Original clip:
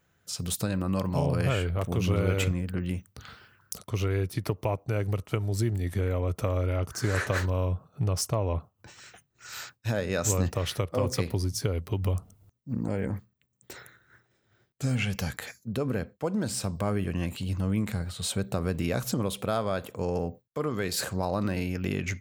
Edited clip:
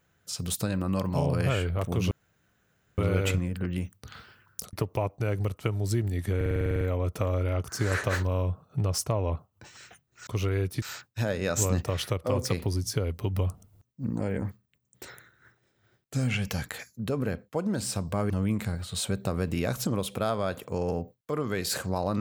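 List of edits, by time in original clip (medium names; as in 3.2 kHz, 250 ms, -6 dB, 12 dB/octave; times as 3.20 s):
2.11 s: insert room tone 0.87 s
3.86–4.41 s: move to 9.50 s
6.04 s: stutter 0.05 s, 10 plays
16.98–17.57 s: delete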